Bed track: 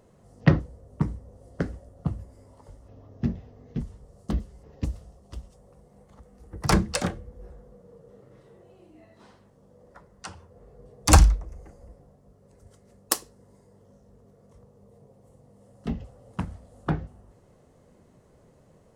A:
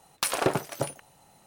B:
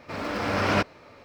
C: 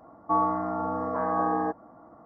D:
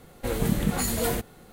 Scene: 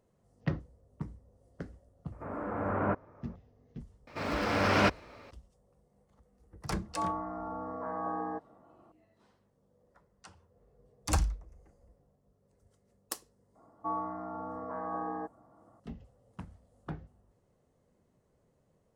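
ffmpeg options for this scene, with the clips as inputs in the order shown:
ffmpeg -i bed.wav -i cue0.wav -i cue1.wav -i cue2.wav -filter_complex "[2:a]asplit=2[link_01][link_02];[3:a]asplit=2[link_03][link_04];[0:a]volume=-14dB[link_05];[link_01]lowpass=frequency=1400:width=0.5412,lowpass=frequency=1400:width=1.3066[link_06];[link_04]highpass=54[link_07];[link_06]atrim=end=1.24,asetpts=PTS-STARTPTS,volume=-6dB,afade=type=in:duration=0.004:curve=hsin,afade=type=out:start_time=1.236:duration=0.004:curve=hsin,adelay=2120[link_08];[link_02]atrim=end=1.24,asetpts=PTS-STARTPTS,volume=-2dB,afade=type=in:duration=0.004:curve=hsin,afade=type=out:start_time=1.236:duration=0.004:curve=hsin,adelay=4070[link_09];[link_03]atrim=end=2.25,asetpts=PTS-STARTPTS,volume=-9.5dB,afade=type=in:duration=0.004:curve=hsin,afade=type=out:start_time=2.246:duration=0.004:curve=hsin,adelay=6670[link_10];[link_07]atrim=end=2.25,asetpts=PTS-STARTPTS,volume=-10.5dB,afade=type=in:duration=0.004:curve=hsin,afade=type=out:start_time=2.246:duration=0.004:curve=hsin,adelay=13550[link_11];[link_05][link_08][link_09][link_10][link_11]amix=inputs=5:normalize=0" out.wav

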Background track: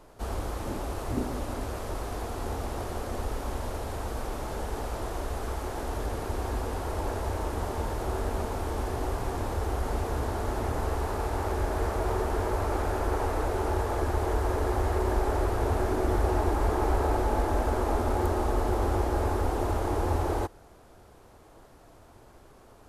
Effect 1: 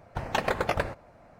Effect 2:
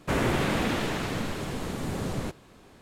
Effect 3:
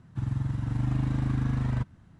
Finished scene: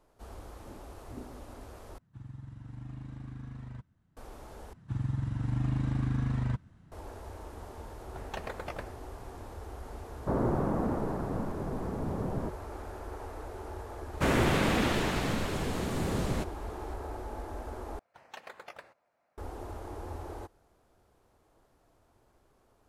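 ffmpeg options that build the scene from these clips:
ffmpeg -i bed.wav -i cue0.wav -i cue1.wav -i cue2.wav -filter_complex "[3:a]asplit=2[link_01][link_02];[1:a]asplit=2[link_03][link_04];[2:a]asplit=2[link_05][link_06];[0:a]volume=-13.5dB[link_07];[link_05]lowpass=frequency=1100:width=0.5412,lowpass=frequency=1100:width=1.3066[link_08];[link_04]highpass=frequency=890:poles=1[link_09];[link_07]asplit=4[link_10][link_11][link_12][link_13];[link_10]atrim=end=1.984[link_14];[link_01]atrim=end=2.19,asetpts=PTS-STARTPTS,volume=-16dB[link_15];[link_11]atrim=start=4.166:end=4.734[link_16];[link_02]atrim=end=2.19,asetpts=PTS-STARTPTS,volume=-3dB[link_17];[link_12]atrim=start=6.916:end=17.994[link_18];[link_09]atrim=end=1.39,asetpts=PTS-STARTPTS,volume=-16.5dB[link_19];[link_13]atrim=start=19.376[link_20];[link_03]atrim=end=1.39,asetpts=PTS-STARTPTS,volume=-13dB,afade=type=in:duration=0.004:curve=hsin,afade=type=out:start_time=1.386:duration=0.004:curve=hsin,adelay=7990[link_21];[link_08]atrim=end=2.81,asetpts=PTS-STARTPTS,volume=-2.5dB,afade=type=in:duration=0.004:curve=hsin,afade=type=out:start_time=2.806:duration=0.004:curve=hsin,adelay=10190[link_22];[link_06]atrim=end=2.81,asetpts=PTS-STARTPTS,volume=-0.5dB,afade=type=in:duration=0.004:curve=hsin,afade=type=out:start_time=2.806:duration=0.004:curve=hsin,adelay=14130[link_23];[link_14][link_15]acrossfade=duration=0.004:curve1=hsin:curve2=hsin[link_24];[link_24][link_16]acrossfade=duration=0.004:curve1=hsin:curve2=hsin[link_25];[link_25][link_17]acrossfade=duration=0.004:curve1=hsin:curve2=hsin[link_26];[link_26][link_18]acrossfade=duration=0.004:curve1=hsin:curve2=hsin[link_27];[link_27][link_19]acrossfade=duration=0.004:curve1=hsin:curve2=hsin[link_28];[link_28][link_20]acrossfade=duration=0.004:curve1=hsin:curve2=hsin[link_29];[link_29][link_21][link_22][link_23]amix=inputs=4:normalize=0" out.wav

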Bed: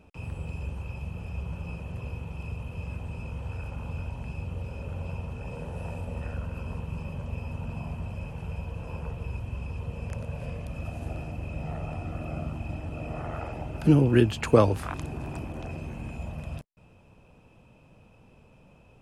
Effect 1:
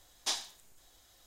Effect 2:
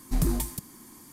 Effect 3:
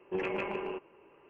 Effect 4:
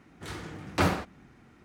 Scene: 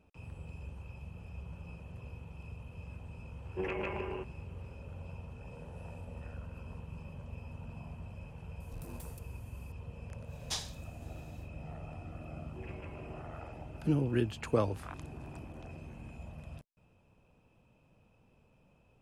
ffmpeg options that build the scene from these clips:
ffmpeg -i bed.wav -i cue0.wav -i cue1.wav -i cue2.wav -filter_complex "[3:a]asplit=2[link_01][link_02];[0:a]volume=-10.5dB[link_03];[2:a]asoftclip=type=tanh:threshold=-28dB[link_04];[link_01]atrim=end=1.29,asetpts=PTS-STARTPTS,volume=-3dB,afade=type=in:duration=0.004:curve=hsin,afade=type=out:start_time=1.286:duration=0.004:curve=hsin,adelay=152145S[link_05];[link_04]atrim=end=1.12,asetpts=PTS-STARTPTS,volume=-16dB,afade=type=in:duration=0.004:curve=hsin,afade=type=out:start_time=1.116:duration=0.004:curve=hsin,adelay=8600[link_06];[1:a]atrim=end=1.26,asetpts=PTS-STARTPTS,volume=-4dB,afade=type=in:duration=0.1,afade=type=out:start_time=1.16:duration=0.1,adelay=10240[link_07];[link_02]atrim=end=1.29,asetpts=PTS-STARTPTS,volume=-16.5dB,afade=type=in:duration=0.004:curve=hsin,afade=type=out:start_time=1.286:duration=0.004:curve=hsin,adelay=12440[link_08];[link_03][link_05][link_06][link_07][link_08]amix=inputs=5:normalize=0" out.wav

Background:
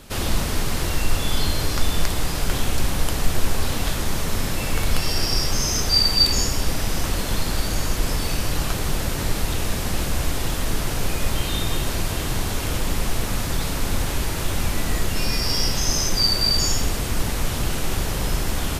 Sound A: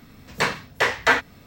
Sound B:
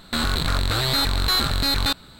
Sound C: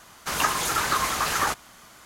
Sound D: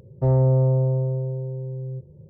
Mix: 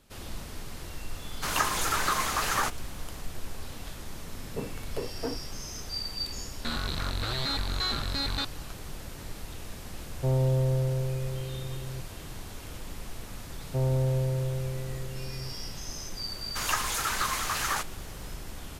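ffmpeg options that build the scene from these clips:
ffmpeg -i bed.wav -i cue0.wav -i cue1.wav -i cue2.wav -i cue3.wav -filter_complex "[3:a]asplit=2[link_01][link_02];[4:a]asplit=2[link_03][link_04];[0:a]volume=-17dB[link_05];[1:a]lowpass=frequency=360:width_type=q:width=1.7[link_06];[2:a]lowpass=frequency=6600:width=0.5412,lowpass=frequency=6600:width=1.3066[link_07];[link_02]tiltshelf=frequency=780:gain=-4[link_08];[link_01]atrim=end=2.05,asetpts=PTS-STARTPTS,volume=-3.5dB,afade=type=in:duration=0.004:curve=hsin,afade=type=out:start_time=2.046:duration=0.004:curve=hsin,adelay=1160[link_09];[link_06]atrim=end=1.46,asetpts=PTS-STARTPTS,volume=-7dB,afade=type=in:duration=0.004:curve=hsin,afade=type=out:start_time=1.456:duration=0.004:curve=hsin,adelay=4160[link_10];[link_07]atrim=end=2.19,asetpts=PTS-STARTPTS,volume=-9.5dB,afade=type=in:duration=0.004:curve=hsin,afade=type=out:start_time=2.186:duration=0.004:curve=hsin,adelay=6520[link_11];[link_03]atrim=end=2.29,asetpts=PTS-STARTPTS,volume=-7dB,afade=type=in:duration=0.004:curve=hsin,afade=type=out:start_time=2.286:duration=0.004:curve=hsin,adelay=10010[link_12];[link_04]atrim=end=2.29,asetpts=PTS-STARTPTS,volume=-8.5dB,afade=type=in:duration=0.004:curve=hsin,afade=type=out:start_time=2.286:duration=0.004:curve=hsin,adelay=13520[link_13];[link_08]atrim=end=2.05,asetpts=PTS-STARTPTS,volume=-7.5dB,afade=type=in:duration=0.004:curve=hsin,afade=type=out:start_time=2.046:duration=0.004:curve=hsin,adelay=16290[link_14];[link_05][link_09][link_10][link_11][link_12][link_13][link_14]amix=inputs=7:normalize=0" out.wav

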